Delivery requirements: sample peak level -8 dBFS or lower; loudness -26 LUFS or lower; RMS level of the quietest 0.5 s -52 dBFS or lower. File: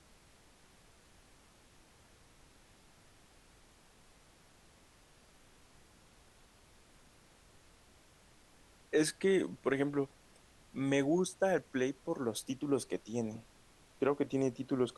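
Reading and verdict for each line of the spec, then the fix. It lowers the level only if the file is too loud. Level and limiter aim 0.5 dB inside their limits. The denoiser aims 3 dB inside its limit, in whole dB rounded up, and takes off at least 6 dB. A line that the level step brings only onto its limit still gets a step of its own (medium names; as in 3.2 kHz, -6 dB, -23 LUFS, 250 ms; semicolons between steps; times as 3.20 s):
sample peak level -17.5 dBFS: pass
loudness -34.5 LUFS: pass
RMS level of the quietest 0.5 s -63 dBFS: pass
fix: none needed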